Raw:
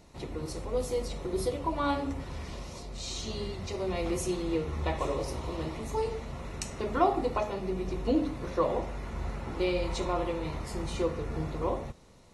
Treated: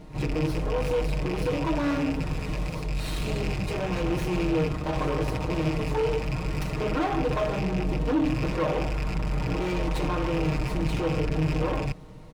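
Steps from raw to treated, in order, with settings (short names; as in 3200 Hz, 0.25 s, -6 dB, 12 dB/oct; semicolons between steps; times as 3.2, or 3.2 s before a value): rattling part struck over -39 dBFS, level -26 dBFS; reverse echo 49 ms -17.5 dB; in parallel at -2 dB: negative-ratio compressor -34 dBFS; on the sum: low shelf 270 Hz +7.5 dB; hard clip -24 dBFS, distortion -10 dB; high shelf 4100 Hz -7 dB; comb 6.5 ms, depth 74%; running maximum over 5 samples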